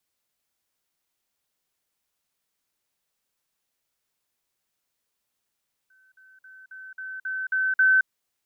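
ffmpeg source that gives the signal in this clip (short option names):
-f lavfi -i "aevalsrc='pow(10,(-57+6*floor(t/0.27))/20)*sin(2*PI*1530*t)*clip(min(mod(t,0.27),0.22-mod(t,0.27))/0.005,0,1)':d=2.16:s=44100"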